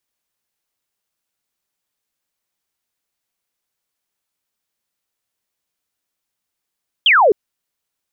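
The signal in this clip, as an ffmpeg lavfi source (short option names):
-f lavfi -i "aevalsrc='0.398*clip(t/0.002,0,1)*clip((0.26-t)/0.002,0,1)*sin(2*PI*3400*0.26/log(370/3400)*(exp(log(370/3400)*t/0.26)-1))':d=0.26:s=44100"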